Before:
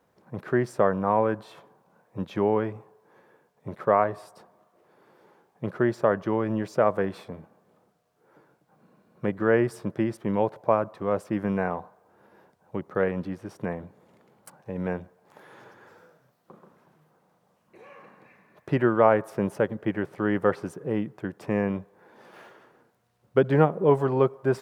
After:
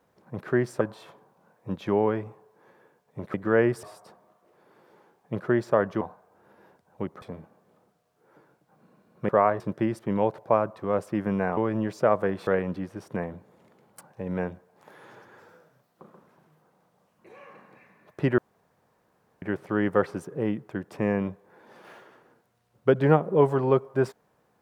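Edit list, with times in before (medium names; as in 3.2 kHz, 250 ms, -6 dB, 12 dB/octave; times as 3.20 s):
0.81–1.30 s: delete
3.83–4.14 s: swap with 9.29–9.78 s
6.32–7.22 s: swap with 11.75–12.96 s
18.87–19.91 s: room tone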